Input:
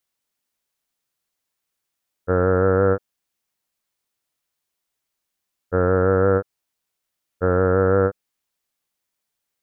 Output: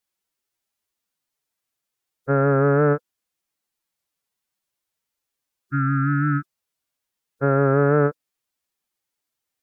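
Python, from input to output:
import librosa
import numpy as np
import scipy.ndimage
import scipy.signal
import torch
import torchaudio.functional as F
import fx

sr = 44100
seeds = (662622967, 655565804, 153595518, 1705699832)

y = fx.pitch_keep_formants(x, sr, semitones=7.0)
y = fx.wow_flutter(y, sr, seeds[0], rate_hz=2.1, depth_cents=27.0)
y = fx.spec_repair(y, sr, seeds[1], start_s=5.61, length_s=0.94, low_hz=380.0, high_hz=1200.0, source='both')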